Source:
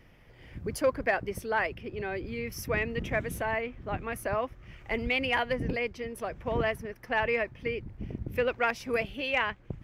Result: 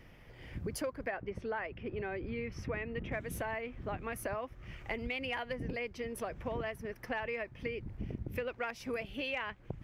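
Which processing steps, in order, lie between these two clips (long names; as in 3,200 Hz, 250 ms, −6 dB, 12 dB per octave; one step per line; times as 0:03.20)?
0:01.08–0:03.12: low-pass filter 2,800 Hz 12 dB per octave
downward compressor 6 to 1, threshold −36 dBFS, peak gain reduction 14.5 dB
level +1 dB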